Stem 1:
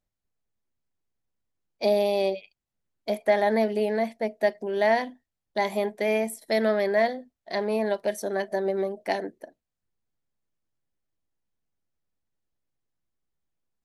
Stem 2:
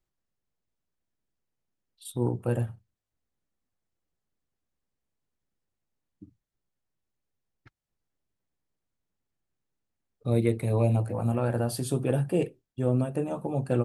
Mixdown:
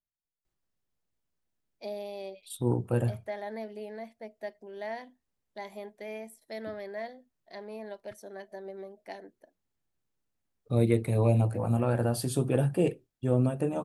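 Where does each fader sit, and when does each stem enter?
-15.5 dB, 0.0 dB; 0.00 s, 0.45 s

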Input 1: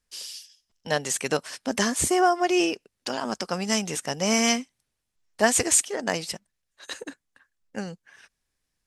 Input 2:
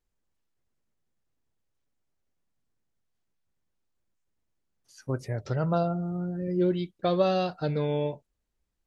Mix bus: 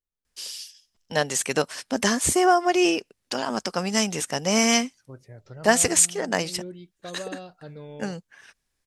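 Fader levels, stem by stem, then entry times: +2.0 dB, -13.0 dB; 0.25 s, 0.00 s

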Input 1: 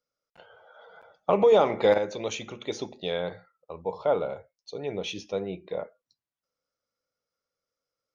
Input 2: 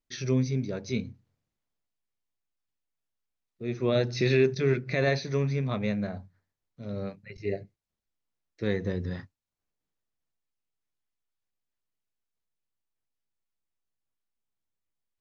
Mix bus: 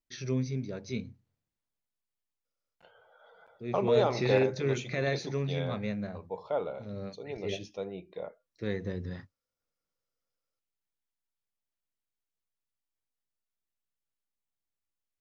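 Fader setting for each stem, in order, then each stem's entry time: -7.0 dB, -5.0 dB; 2.45 s, 0.00 s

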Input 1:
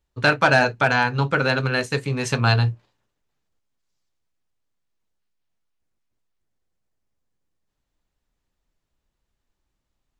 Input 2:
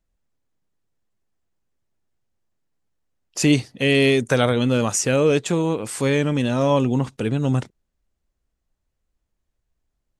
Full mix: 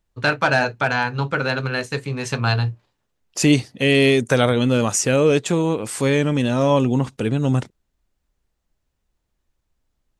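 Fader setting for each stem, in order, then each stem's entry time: -1.5 dB, +1.5 dB; 0.00 s, 0.00 s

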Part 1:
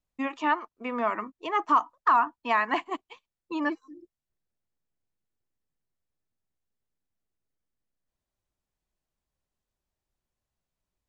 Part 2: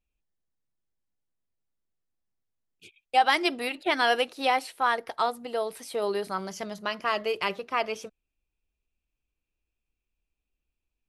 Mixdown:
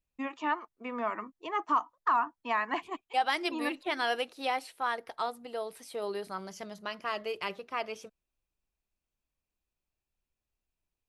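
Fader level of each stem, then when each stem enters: -5.5 dB, -7.0 dB; 0.00 s, 0.00 s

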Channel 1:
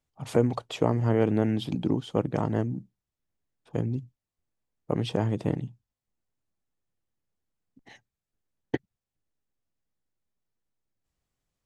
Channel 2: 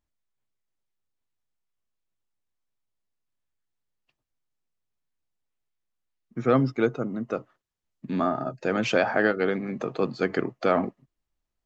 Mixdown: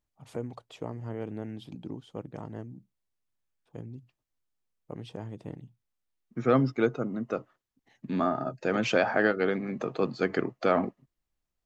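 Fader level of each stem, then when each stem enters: -13.0 dB, -2.0 dB; 0.00 s, 0.00 s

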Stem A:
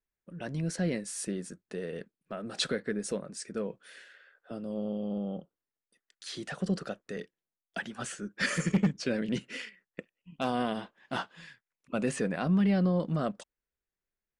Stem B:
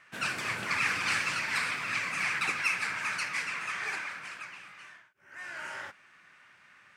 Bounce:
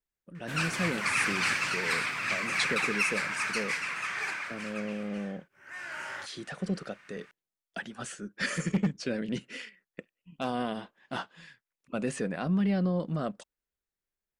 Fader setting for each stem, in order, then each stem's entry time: -1.5 dB, +1.0 dB; 0.00 s, 0.35 s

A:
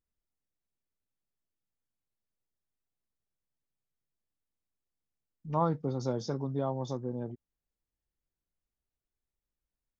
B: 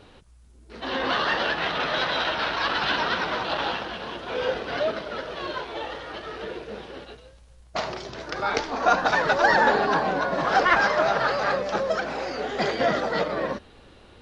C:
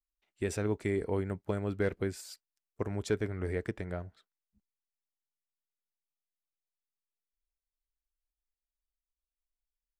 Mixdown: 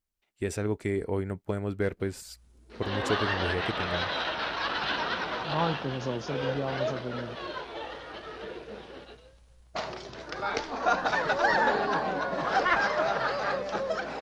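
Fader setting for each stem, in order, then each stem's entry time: -0.5 dB, -5.5 dB, +2.0 dB; 0.00 s, 2.00 s, 0.00 s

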